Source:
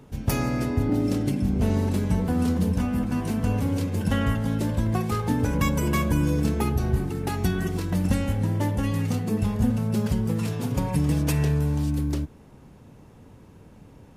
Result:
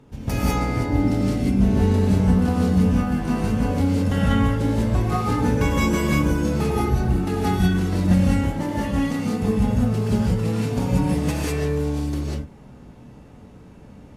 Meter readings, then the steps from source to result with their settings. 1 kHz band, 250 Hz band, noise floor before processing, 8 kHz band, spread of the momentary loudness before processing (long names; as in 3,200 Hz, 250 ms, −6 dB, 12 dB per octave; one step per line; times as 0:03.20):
+5.0 dB, +4.5 dB, −50 dBFS, +1.0 dB, 4 LU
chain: high-shelf EQ 11,000 Hz −11.5 dB
reverb whose tail is shaped and stops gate 220 ms rising, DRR −6 dB
level −2.5 dB